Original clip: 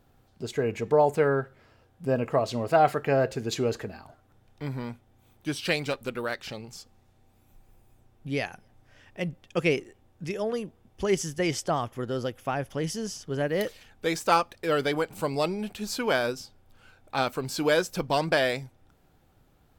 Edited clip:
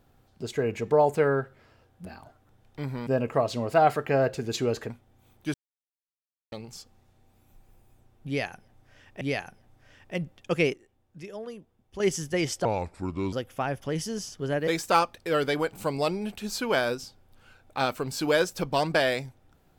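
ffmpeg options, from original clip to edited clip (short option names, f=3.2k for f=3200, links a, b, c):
-filter_complex "[0:a]asplit=12[a][b][c][d][e][f][g][h][i][j][k][l];[a]atrim=end=2.052[m];[b]atrim=start=3.878:end=4.902[n];[c]atrim=start=2.048:end=3.882[o];[d]atrim=start=4.898:end=5.54,asetpts=PTS-STARTPTS,afade=t=out:st=0.638:d=0.004:c=hsin[p];[e]atrim=start=5.54:end=6.52,asetpts=PTS-STARTPTS,volume=0[q];[f]atrim=start=6.52:end=9.212,asetpts=PTS-STARTPTS,afade=t=in:d=0.004:c=hsin[r];[g]atrim=start=8.268:end=9.792[s];[h]atrim=start=9.788:end=11.062,asetpts=PTS-STARTPTS,volume=-9dB[t];[i]atrim=start=11.058:end=11.714[u];[j]atrim=start=11.71:end=12.21,asetpts=PTS-STARTPTS,asetrate=32634,aresample=44100,atrim=end_sample=29797,asetpts=PTS-STARTPTS[v];[k]atrim=start=12.206:end=13.562[w];[l]atrim=start=14.048[x];[m][n]acrossfade=d=0.004:c1=hsin:c2=hsin[y];[y][o]acrossfade=d=0.004:c1=hsin:c2=hsin[z];[p][q][r]concat=n=3:v=0:a=1[aa];[z][aa]acrossfade=d=0.004:c1=hsin:c2=hsin[ab];[ab][s]acrossfade=d=0.004:c1=hsin:c2=hsin[ac];[ac][t]acrossfade=d=0.004:c1=hsin:c2=hsin[ad];[ad][u]acrossfade=d=0.004:c1=hsin:c2=hsin[ae];[ae][v]acrossfade=d=0.004:c1=hsin:c2=hsin[af];[af][w]acrossfade=d=0.004:c1=hsin:c2=hsin[ag];[ag][x]acrossfade=d=0.004:c1=hsin:c2=hsin"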